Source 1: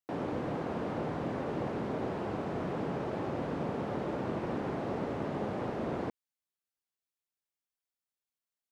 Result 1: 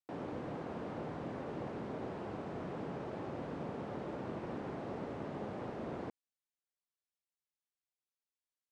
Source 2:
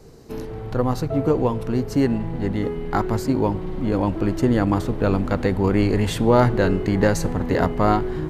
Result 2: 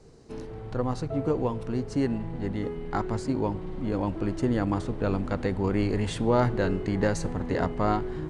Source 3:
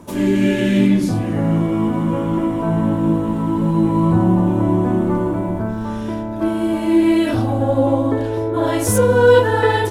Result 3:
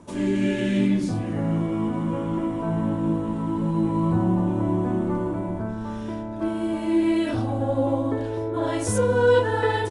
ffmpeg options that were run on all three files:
-af "aresample=22050,aresample=44100,volume=-7dB"

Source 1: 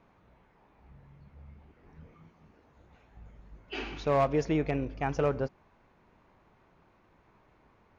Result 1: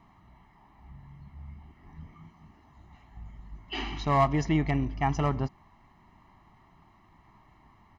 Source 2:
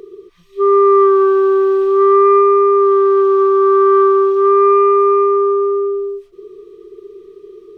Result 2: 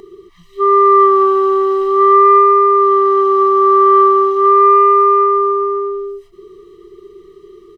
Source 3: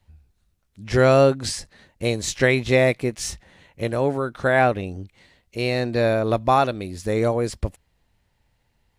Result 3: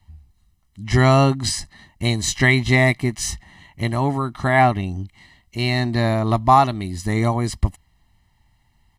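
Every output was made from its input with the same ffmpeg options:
-af "aecho=1:1:1:0.92,volume=1.5dB"

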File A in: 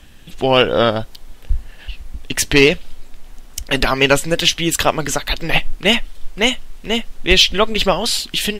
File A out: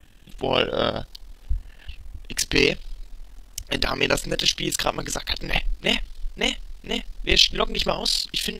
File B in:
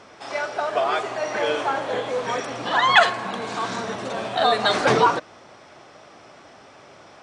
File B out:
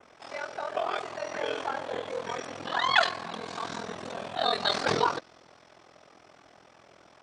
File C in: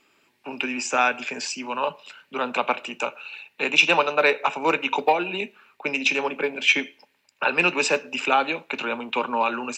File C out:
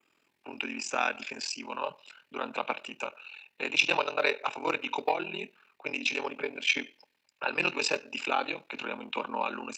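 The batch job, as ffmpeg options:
-af "adynamicequalizer=threshold=0.0141:dfrequency=4600:dqfactor=1.8:tfrequency=4600:tqfactor=1.8:attack=5:release=100:ratio=0.375:range=4:mode=boostabove:tftype=bell,aeval=exprs='val(0)*sin(2*PI*21*n/s)':c=same,volume=-6dB"

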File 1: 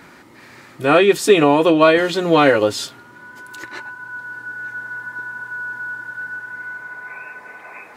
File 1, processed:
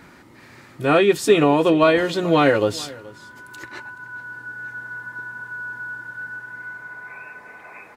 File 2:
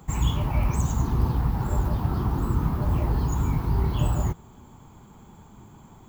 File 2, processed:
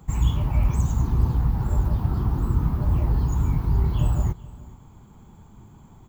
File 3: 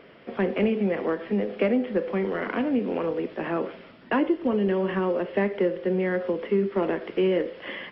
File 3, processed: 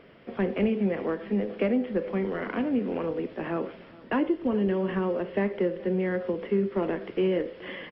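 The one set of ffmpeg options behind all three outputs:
-filter_complex "[0:a]lowshelf=f=160:g=8.5,asplit=2[a][b];[b]aecho=0:1:427:0.0891[c];[a][c]amix=inputs=2:normalize=0,volume=-4dB"

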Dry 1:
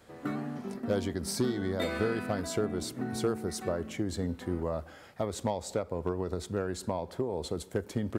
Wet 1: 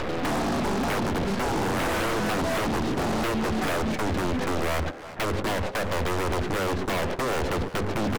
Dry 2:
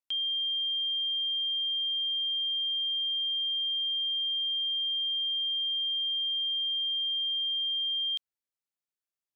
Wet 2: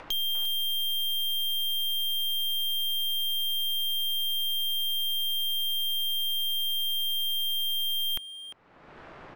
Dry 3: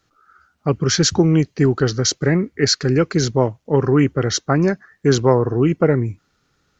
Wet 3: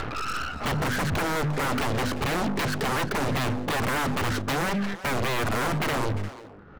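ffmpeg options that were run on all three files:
-filter_complex "[0:a]lowpass=1.5k,aemphasis=mode=reproduction:type=75fm,bandreject=f=50:t=h:w=6,bandreject=f=100:t=h:w=6,bandreject=f=150:t=h:w=6,bandreject=f=200:t=h:w=6,bandreject=f=250:t=h:w=6,agate=range=-22dB:threshold=-42dB:ratio=16:detection=peak,adynamicequalizer=threshold=0.02:dfrequency=240:dqfactor=2.6:tfrequency=240:tqfactor=2.6:attack=5:release=100:ratio=0.375:range=2:mode=boostabove:tftype=bell,acompressor=mode=upward:threshold=-27dB:ratio=2.5,alimiter=limit=-11.5dB:level=0:latency=1:release=253,acompressor=threshold=-31dB:ratio=3,aeval=exprs='0.112*sin(PI/2*7.08*val(0)/0.112)':c=same,aeval=exprs='0.112*(cos(1*acos(clip(val(0)/0.112,-1,1)))-cos(1*PI/2))+0.0112*(cos(2*acos(clip(val(0)/0.112,-1,1)))-cos(2*PI/2))+0.00398*(cos(3*acos(clip(val(0)/0.112,-1,1)))-cos(3*PI/2))+0.00178*(cos(5*acos(clip(val(0)/0.112,-1,1)))-cos(5*PI/2))+0.0251*(cos(6*acos(clip(val(0)/0.112,-1,1)))-cos(6*PI/2))':c=same,asoftclip=type=hard:threshold=-25.5dB,asplit=2[a][b];[b]adelay=350,highpass=300,lowpass=3.4k,asoftclip=type=hard:threshold=-35dB,volume=-7dB[c];[a][c]amix=inputs=2:normalize=0,volume=1.5dB"

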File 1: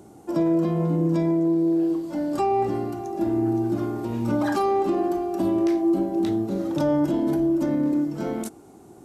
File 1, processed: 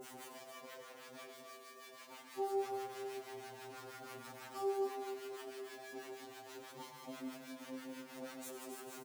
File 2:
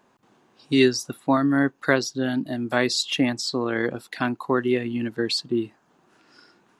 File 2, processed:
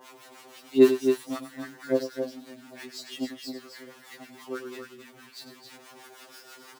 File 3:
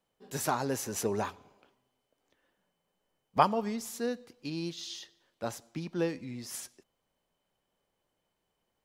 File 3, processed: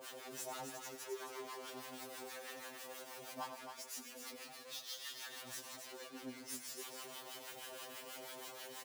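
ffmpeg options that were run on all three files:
-filter_complex "[0:a]aeval=exprs='val(0)+0.5*0.0944*sgn(val(0))':c=same,agate=range=-19dB:threshold=-14dB:ratio=16:detection=peak,highpass=320,acrossover=split=840[a][b];[a]aeval=exprs='val(0)*(1-1/2+1/2*cos(2*PI*6.2*n/s))':c=same[c];[b]aeval=exprs='val(0)*(1-1/2-1/2*cos(2*PI*6.2*n/s))':c=same[d];[c][d]amix=inputs=2:normalize=0,aecho=1:1:96.21|268.2:0.282|0.447,afftfilt=real='re*2.45*eq(mod(b,6),0)':imag='im*2.45*eq(mod(b,6),0)':win_size=2048:overlap=0.75,volume=3dB"

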